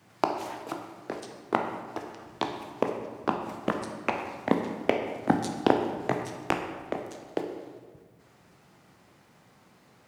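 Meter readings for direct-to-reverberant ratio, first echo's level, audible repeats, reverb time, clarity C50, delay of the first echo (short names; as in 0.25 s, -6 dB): 3.5 dB, none, none, 1.6 s, 6.0 dB, none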